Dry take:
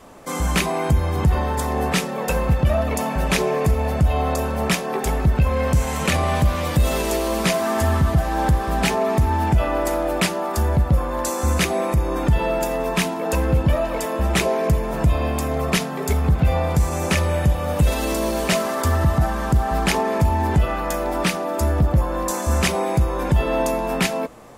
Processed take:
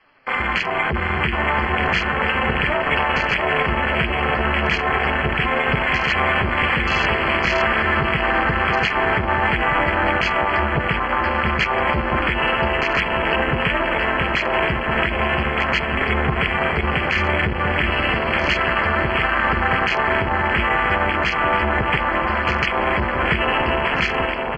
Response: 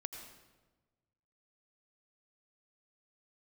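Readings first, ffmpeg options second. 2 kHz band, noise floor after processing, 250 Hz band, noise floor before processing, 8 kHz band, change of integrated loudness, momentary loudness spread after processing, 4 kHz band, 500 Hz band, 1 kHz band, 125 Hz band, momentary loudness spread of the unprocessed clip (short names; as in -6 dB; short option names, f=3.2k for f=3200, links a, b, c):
+11.0 dB, -23 dBFS, -2.0 dB, -27 dBFS, under -15 dB, +2.0 dB, 2 LU, +4.5 dB, -0.5 dB, +4.5 dB, -6.0 dB, 4 LU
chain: -filter_complex "[0:a]acrossover=split=380|3700[a][b][c];[b]crystalizer=i=7.5:c=0[d];[a][d][c]amix=inputs=3:normalize=0,flanger=delay=6.2:depth=8.5:regen=-37:speed=0.36:shape=triangular,acrusher=bits=7:mode=log:mix=0:aa=0.000001,acompressor=threshold=-20dB:ratio=6,aresample=11025,aresample=44100,equalizer=f=1.9k:t=o:w=1.6:g=11.5,asplit=2[e][f];[f]aecho=0:1:680|1224|1659|2007|2286:0.631|0.398|0.251|0.158|0.1[g];[e][g]amix=inputs=2:normalize=0,afwtdn=0.0708,tremolo=f=290:d=0.889,asuperstop=centerf=3700:order=20:qfactor=5.4,alimiter=level_in=10dB:limit=-1dB:release=50:level=0:latency=1,volume=-5.5dB"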